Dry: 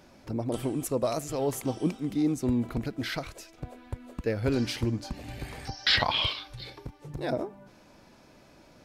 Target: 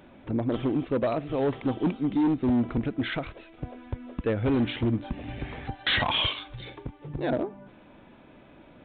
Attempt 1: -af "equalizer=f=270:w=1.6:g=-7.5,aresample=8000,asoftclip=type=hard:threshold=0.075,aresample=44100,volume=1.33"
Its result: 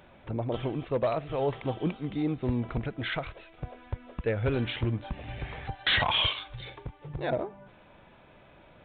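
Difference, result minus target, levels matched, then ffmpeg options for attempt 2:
250 Hz band -5.0 dB
-af "equalizer=f=270:w=1.6:g=3.5,aresample=8000,asoftclip=type=hard:threshold=0.075,aresample=44100,volume=1.33"

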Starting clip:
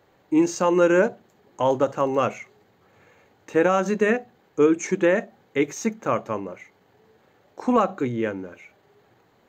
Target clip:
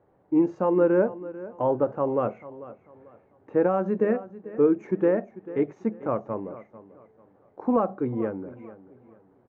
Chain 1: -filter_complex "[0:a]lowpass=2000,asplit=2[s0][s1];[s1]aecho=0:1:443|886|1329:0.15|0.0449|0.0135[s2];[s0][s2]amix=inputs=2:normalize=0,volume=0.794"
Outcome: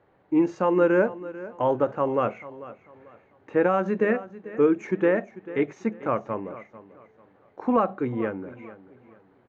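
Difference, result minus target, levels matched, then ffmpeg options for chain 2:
2 kHz band +8.0 dB
-filter_complex "[0:a]lowpass=940,asplit=2[s0][s1];[s1]aecho=0:1:443|886|1329:0.15|0.0449|0.0135[s2];[s0][s2]amix=inputs=2:normalize=0,volume=0.794"

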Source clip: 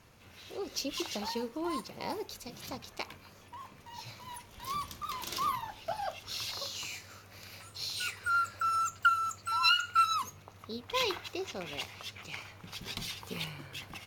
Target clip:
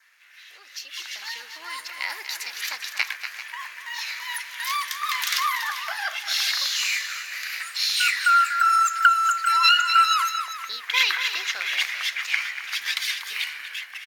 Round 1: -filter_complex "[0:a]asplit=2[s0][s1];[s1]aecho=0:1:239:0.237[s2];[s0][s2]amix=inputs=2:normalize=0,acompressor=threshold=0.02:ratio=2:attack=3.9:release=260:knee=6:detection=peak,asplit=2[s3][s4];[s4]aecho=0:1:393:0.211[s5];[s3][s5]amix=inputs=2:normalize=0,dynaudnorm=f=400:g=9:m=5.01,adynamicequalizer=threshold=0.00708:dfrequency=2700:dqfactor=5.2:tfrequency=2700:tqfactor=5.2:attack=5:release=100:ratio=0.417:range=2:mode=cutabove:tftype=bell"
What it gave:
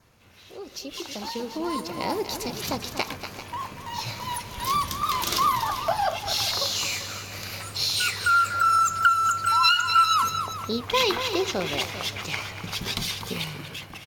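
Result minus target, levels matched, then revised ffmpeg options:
2 kHz band -4.5 dB
-filter_complex "[0:a]asplit=2[s0][s1];[s1]aecho=0:1:239:0.237[s2];[s0][s2]amix=inputs=2:normalize=0,acompressor=threshold=0.02:ratio=2:attack=3.9:release=260:knee=6:detection=peak,asplit=2[s3][s4];[s4]aecho=0:1:393:0.211[s5];[s3][s5]amix=inputs=2:normalize=0,dynaudnorm=f=400:g=9:m=5.01,adynamicequalizer=threshold=0.00708:dfrequency=2700:dqfactor=5.2:tfrequency=2700:tqfactor=5.2:attack=5:release=100:ratio=0.417:range=2:mode=cutabove:tftype=bell,highpass=f=1800:t=q:w=4.2"

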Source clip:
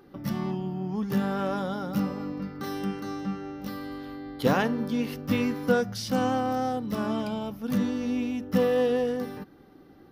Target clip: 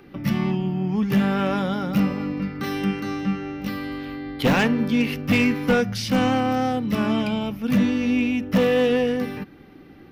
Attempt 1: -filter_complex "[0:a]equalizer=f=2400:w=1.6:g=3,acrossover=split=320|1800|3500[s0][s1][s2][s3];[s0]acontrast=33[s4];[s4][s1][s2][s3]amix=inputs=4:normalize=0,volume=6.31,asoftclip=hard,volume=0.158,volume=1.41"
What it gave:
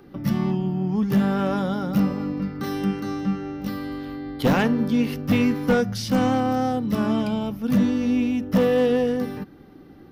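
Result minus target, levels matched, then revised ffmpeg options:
2 kHz band -4.5 dB
-filter_complex "[0:a]equalizer=f=2400:w=1.6:g=12.5,acrossover=split=320|1800|3500[s0][s1][s2][s3];[s0]acontrast=33[s4];[s4][s1][s2][s3]amix=inputs=4:normalize=0,volume=6.31,asoftclip=hard,volume=0.158,volume=1.41"

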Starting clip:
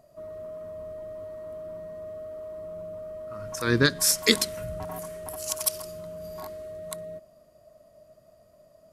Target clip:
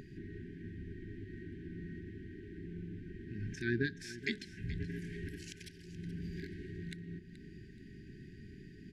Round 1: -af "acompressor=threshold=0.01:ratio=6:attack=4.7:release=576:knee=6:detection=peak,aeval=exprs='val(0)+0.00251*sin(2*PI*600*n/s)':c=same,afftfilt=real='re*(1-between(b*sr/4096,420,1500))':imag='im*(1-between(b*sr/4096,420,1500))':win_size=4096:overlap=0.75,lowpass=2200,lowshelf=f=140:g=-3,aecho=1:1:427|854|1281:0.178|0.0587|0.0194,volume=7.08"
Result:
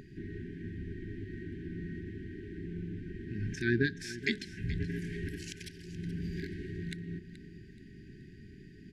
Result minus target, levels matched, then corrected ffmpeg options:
compression: peak gain reduction -5 dB
-af "acompressor=threshold=0.00501:ratio=6:attack=4.7:release=576:knee=6:detection=peak,aeval=exprs='val(0)+0.00251*sin(2*PI*600*n/s)':c=same,afftfilt=real='re*(1-between(b*sr/4096,420,1500))':imag='im*(1-between(b*sr/4096,420,1500))':win_size=4096:overlap=0.75,lowpass=2200,lowshelf=f=140:g=-3,aecho=1:1:427|854|1281:0.178|0.0587|0.0194,volume=7.08"

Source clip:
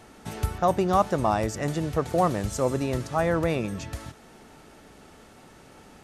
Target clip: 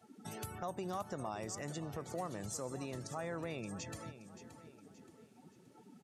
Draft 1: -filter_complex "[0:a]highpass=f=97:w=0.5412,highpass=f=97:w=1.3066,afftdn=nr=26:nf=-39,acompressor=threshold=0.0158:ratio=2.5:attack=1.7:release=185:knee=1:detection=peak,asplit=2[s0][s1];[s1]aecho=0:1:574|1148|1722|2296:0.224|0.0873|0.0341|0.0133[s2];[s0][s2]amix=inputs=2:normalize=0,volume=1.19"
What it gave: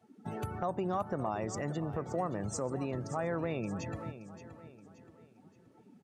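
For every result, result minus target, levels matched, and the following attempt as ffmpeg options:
4 kHz band -8.5 dB; compression: peak gain reduction -7.5 dB
-filter_complex "[0:a]highpass=f=97:w=0.5412,highpass=f=97:w=1.3066,highshelf=f=2900:g=10,afftdn=nr=26:nf=-39,acompressor=threshold=0.0158:ratio=2.5:attack=1.7:release=185:knee=1:detection=peak,asplit=2[s0][s1];[s1]aecho=0:1:574|1148|1722|2296:0.224|0.0873|0.0341|0.0133[s2];[s0][s2]amix=inputs=2:normalize=0,volume=1.19"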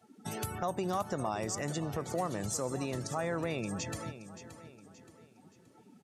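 compression: peak gain reduction -7 dB
-filter_complex "[0:a]highpass=f=97:w=0.5412,highpass=f=97:w=1.3066,highshelf=f=2900:g=10,afftdn=nr=26:nf=-39,acompressor=threshold=0.00398:ratio=2.5:attack=1.7:release=185:knee=1:detection=peak,asplit=2[s0][s1];[s1]aecho=0:1:574|1148|1722|2296:0.224|0.0873|0.0341|0.0133[s2];[s0][s2]amix=inputs=2:normalize=0,volume=1.19"

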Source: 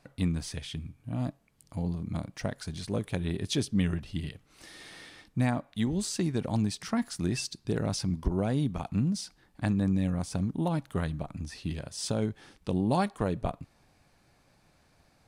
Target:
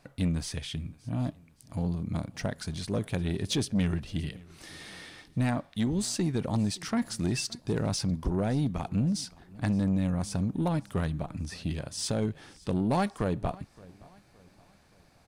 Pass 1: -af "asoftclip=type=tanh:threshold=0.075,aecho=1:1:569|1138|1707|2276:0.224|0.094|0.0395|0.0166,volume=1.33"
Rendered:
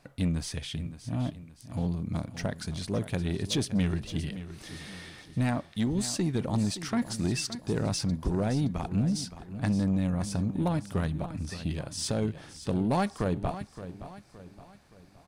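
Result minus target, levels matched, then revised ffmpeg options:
echo-to-direct +10 dB
-af "asoftclip=type=tanh:threshold=0.075,aecho=1:1:569|1138|1707:0.0708|0.0297|0.0125,volume=1.33"

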